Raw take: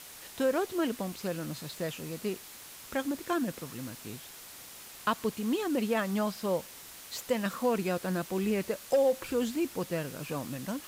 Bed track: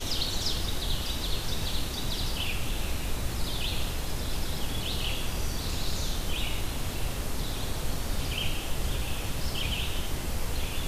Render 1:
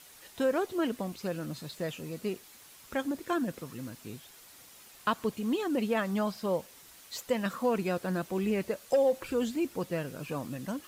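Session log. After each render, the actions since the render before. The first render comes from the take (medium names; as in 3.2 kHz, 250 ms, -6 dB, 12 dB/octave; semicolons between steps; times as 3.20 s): noise reduction 7 dB, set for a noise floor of -48 dBFS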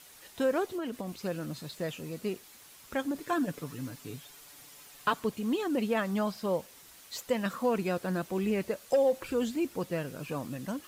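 0.65–1.10 s: compression, threshold -31 dBFS; 3.15–5.20 s: comb 6.9 ms, depth 63%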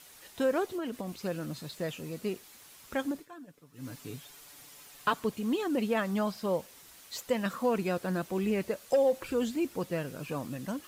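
3.10–3.91 s: dip -18.5 dB, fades 0.18 s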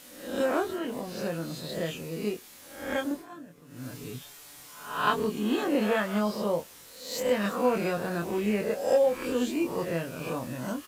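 reverse spectral sustain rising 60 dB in 0.66 s; doubling 24 ms -5 dB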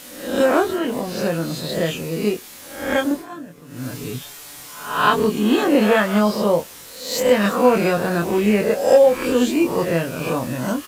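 trim +10.5 dB; peak limiter -2 dBFS, peak gain reduction 2.5 dB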